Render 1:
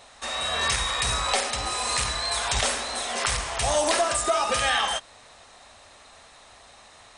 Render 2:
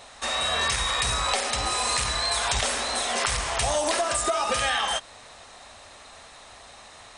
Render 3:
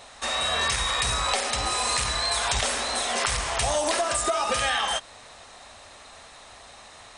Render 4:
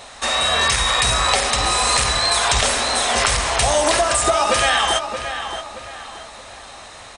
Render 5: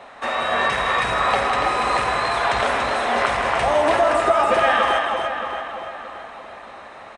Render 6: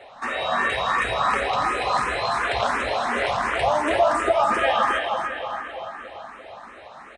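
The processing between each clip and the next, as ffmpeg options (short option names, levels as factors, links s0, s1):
-af "acompressor=threshold=0.0562:ratio=6,volume=1.5"
-af anull
-filter_complex "[0:a]asplit=2[s0][s1];[s1]adelay=625,lowpass=f=3300:p=1,volume=0.376,asplit=2[s2][s3];[s3]adelay=625,lowpass=f=3300:p=1,volume=0.39,asplit=2[s4][s5];[s5]adelay=625,lowpass=f=3300:p=1,volume=0.39,asplit=2[s6][s7];[s7]adelay=625,lowpass=f=3300:p=1,volume=0.39[s8];[s0][s2][s4][s6][s8]amix=inputs=5:normalize=0,volume=2.37"
-filter_complex "[0:a]acrossover=split=150 2500:gain=0.2 1 0.0794[s0][s1][s2];[s0][s1][s2]amix=inputs=3:normalize=0,aecho=1:1:160.3|285.7:0.355|0.562"
-filter_complex "[0:a]asplit=2[s0][s1];[s1]afreqshift=2.8[s2];[s0][s2]amix=inputs=2:normalize=1"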